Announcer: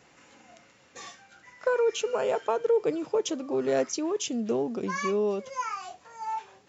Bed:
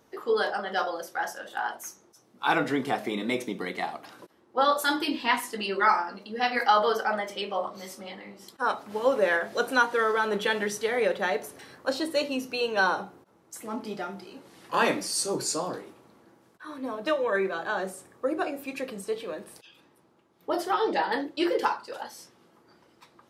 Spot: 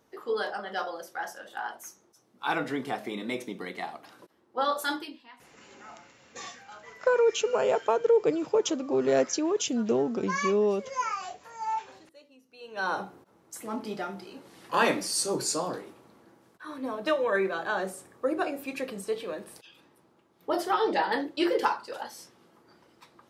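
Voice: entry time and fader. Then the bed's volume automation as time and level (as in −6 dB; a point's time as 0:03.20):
5.40 s, +2.0 dB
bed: 0:04.94 −4.5 dB
0:05.31 −28 dB
0:12.45 −28 dB
0:12.97 0 dB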